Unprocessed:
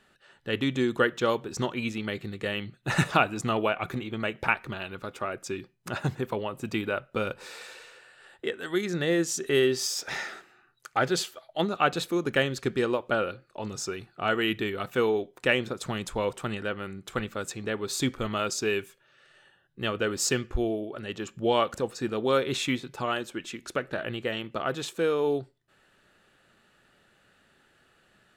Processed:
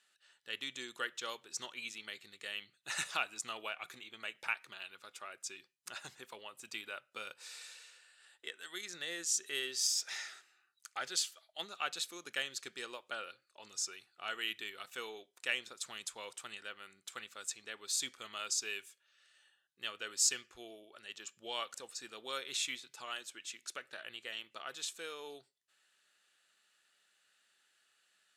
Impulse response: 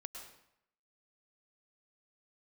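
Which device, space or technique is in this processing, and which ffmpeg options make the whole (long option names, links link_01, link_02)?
piezo pickup straight into a mixer: -af "lowpass=8500,aderivative,volume=1dB"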